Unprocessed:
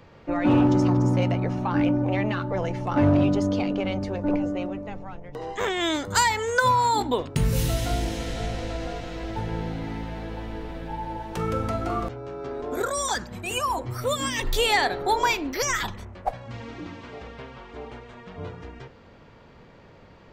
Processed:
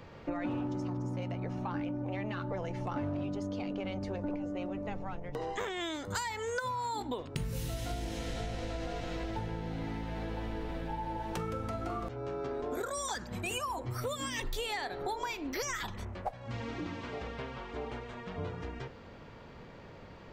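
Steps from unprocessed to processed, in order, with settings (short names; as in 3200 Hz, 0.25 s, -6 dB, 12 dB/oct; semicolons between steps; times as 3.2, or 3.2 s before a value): compressor 10:1, threshold -33 dBFS, peak gain reduction 17.5 dB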